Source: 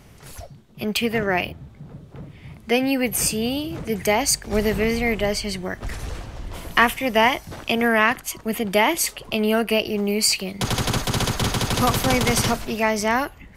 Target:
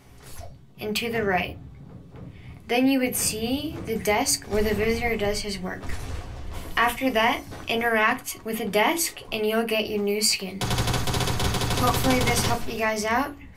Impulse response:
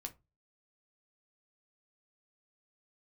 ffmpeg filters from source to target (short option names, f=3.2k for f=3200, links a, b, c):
-filter_complex "[0:a]bandreject=f=46.99:t=h:w=4,bandreject=f=93.98:t=h:w=4,bandreject=f=140.97:t=h:w=4,bandreject=f=187.96:t=h:w=4,bandreject=f=234.95:t=h:w=4,bandreject=f=281.94:t=h:w=4,bandreject=f=328.93:t=h:w=4,bandreject=f=375.92:t=h:w=4[a];[1:a]atrim=start_sample=2205[b];[a][b]afir=irnorm=-1:irlink=0,alimiter=level_in=8dB:limit=-1dB:release=50:level=0:latency=1,volume=-7dB"